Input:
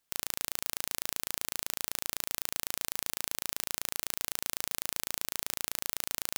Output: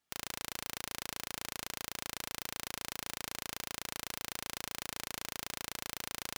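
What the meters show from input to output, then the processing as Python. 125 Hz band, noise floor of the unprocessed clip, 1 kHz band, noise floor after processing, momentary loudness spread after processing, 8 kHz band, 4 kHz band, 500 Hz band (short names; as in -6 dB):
+0.5 dB, -79 dBFS, 0.0 dB, -83 dBFS, 0 LU, -6.5 dB, -3.0 dB, -1.0 dB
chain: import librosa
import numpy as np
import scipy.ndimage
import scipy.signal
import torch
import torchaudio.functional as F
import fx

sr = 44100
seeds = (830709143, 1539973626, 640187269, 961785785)

y = fx.high_shelf(x, sr, hz=6300.0, db=-10.0)
y = fx.notch_comb(y, sr, f0_hz=520.0)
y = y * 10.0 ** (1.0 / 20.0)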